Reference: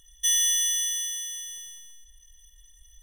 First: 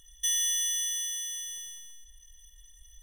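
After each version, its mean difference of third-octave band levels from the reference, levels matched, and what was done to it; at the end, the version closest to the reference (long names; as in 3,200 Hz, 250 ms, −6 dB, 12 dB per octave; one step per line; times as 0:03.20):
1.5 dB: downward compressor 1.5 to 1, threshold −34 dBFS, peak gain reduction 5.5 dB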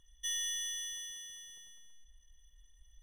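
3.0 dB: low-pass filter 2,000 Hz 6 dB per octave
level −5 dB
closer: first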